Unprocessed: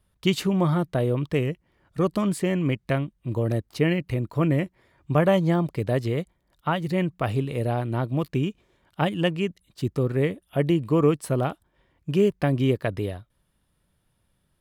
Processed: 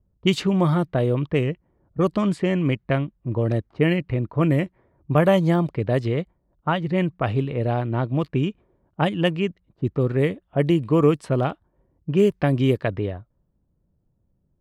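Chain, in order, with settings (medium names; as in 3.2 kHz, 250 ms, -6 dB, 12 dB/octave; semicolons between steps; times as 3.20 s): level-controlled noise filter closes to 460 Hz, open at -17 dBFS; trim +2.5 dB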